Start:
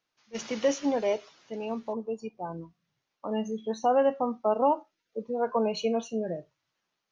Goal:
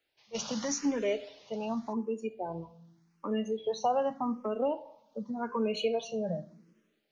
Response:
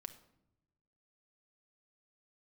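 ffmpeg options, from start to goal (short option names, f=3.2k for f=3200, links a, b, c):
-filter_complex "[0:a]acrossover=split=150|3000[a][b][c];[b]acompressor=threshold=-35dB:ratio=2[d];[a][d][c]amix=inputs=3:normalize=0,asplit=2[e][f];[1:a]atrim=start_sample=2205[g];[f][g]afir=irnorm=-1:irlink=0,volume=3.5dB[h];[e][h]amix=inputs=2:normalize=0,asplit=2[i][j];[j]afreqshift=0.86[k];[i][k]amix=inputs=2:normalize=1"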